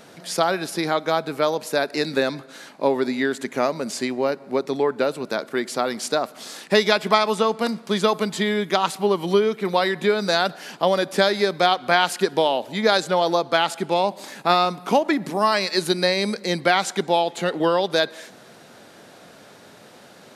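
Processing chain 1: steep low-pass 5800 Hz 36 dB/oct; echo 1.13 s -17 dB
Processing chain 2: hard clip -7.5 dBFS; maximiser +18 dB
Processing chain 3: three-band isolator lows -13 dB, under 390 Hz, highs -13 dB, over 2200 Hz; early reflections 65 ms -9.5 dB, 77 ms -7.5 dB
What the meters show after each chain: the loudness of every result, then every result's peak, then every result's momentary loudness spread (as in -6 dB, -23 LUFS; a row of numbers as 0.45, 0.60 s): -22.0, -11.5, -23.5 LUFS; -2.5, -1.0, -4.5 dBFS; 7, 10, 7 LU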